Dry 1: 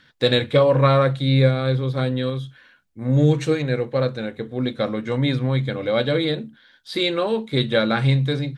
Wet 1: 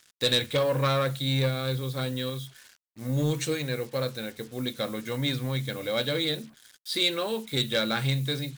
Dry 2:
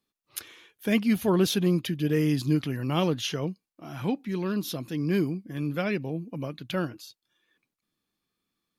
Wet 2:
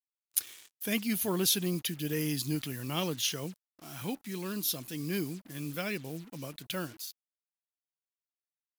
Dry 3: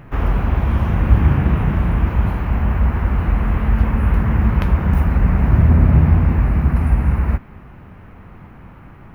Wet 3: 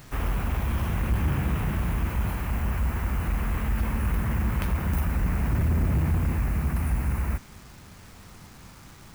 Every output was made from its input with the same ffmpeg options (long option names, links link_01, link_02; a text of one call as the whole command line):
ffmpeg -i in.wav -af "asoftclip=type=tanh:threshold=-9.5dB,acrusher=bits=7:mix=0:aa=0.5,crystalizer=i=4.5:c=0,volume=-8.5dB" out.wav